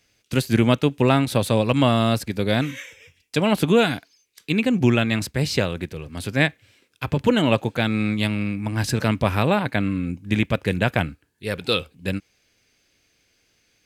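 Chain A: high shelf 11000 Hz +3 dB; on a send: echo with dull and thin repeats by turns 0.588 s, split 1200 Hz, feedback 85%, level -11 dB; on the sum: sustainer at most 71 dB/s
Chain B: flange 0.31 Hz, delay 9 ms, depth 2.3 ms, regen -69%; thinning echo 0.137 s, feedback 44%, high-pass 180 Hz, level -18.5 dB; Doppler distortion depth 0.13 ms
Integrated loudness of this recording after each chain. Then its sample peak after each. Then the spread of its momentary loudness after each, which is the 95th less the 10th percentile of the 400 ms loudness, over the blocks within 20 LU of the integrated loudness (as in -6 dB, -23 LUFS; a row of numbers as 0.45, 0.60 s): -21.0, -26.5 LUFS; -2.5, -7.5 dBFS; 12, 11 LU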